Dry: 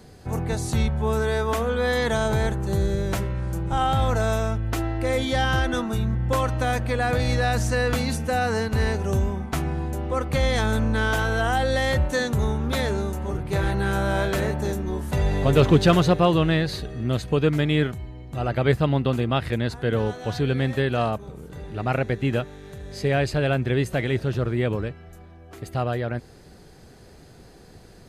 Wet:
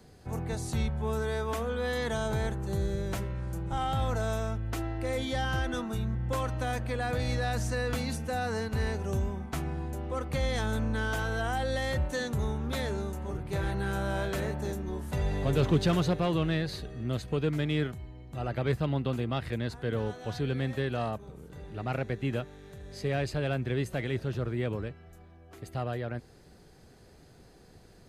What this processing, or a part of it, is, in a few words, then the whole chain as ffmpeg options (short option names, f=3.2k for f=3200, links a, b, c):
one-band saturation: -filter_complex "[0:a]acrossover=split=300|3300[a][b][c];[b]asoftclip=type=tanh:threshold=-17.5dB[d];[a][d][c]amix=inputs=3:normalize=0,volume=-7.5dB"